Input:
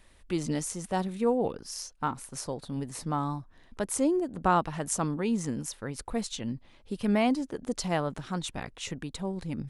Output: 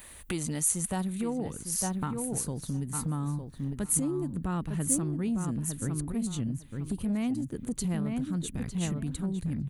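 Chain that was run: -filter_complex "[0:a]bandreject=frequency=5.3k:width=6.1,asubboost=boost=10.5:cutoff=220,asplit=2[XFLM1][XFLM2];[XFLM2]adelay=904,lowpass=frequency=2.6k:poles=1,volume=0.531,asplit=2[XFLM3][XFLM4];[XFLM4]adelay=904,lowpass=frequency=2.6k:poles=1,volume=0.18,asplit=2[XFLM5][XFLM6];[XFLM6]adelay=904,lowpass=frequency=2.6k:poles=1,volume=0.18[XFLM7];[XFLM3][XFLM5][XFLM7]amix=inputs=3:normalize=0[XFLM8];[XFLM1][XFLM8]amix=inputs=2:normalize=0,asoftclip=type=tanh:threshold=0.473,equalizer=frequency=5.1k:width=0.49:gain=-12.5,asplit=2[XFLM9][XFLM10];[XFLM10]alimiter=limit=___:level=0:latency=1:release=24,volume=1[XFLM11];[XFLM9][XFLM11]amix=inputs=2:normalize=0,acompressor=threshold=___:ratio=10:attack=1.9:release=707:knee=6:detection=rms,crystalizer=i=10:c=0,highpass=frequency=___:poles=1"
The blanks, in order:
0.168, 0.0447, 55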